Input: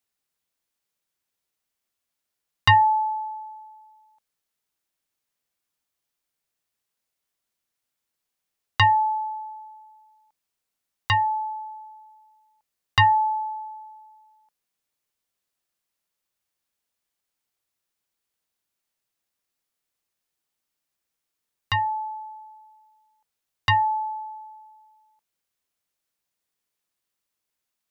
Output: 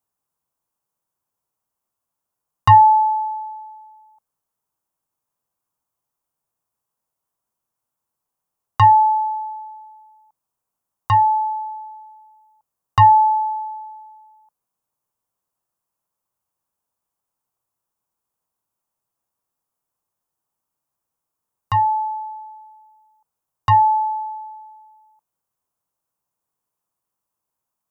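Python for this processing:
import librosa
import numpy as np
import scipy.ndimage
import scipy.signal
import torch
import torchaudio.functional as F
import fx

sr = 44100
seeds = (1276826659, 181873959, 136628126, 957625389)

y = fx.graphic_eq_10(x, sr, hz=(125, 1000, 2000, 4000), db=(6, 10, -10, -10))
y = F.gain(torch.from_numpy(y), 1.0).numpy()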